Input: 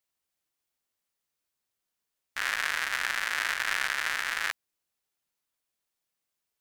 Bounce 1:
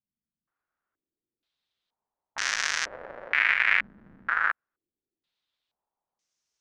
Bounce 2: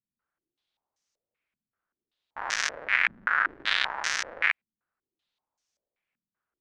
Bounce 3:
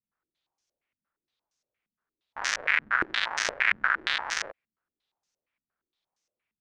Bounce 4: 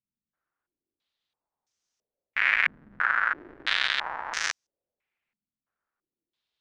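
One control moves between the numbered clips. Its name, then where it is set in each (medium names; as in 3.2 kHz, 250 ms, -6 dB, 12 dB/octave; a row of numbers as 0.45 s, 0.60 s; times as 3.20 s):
step-sequenced low-pass, rate: 2.1 Hz, 5.2 Hz, 8.6 Hz, 3 Hz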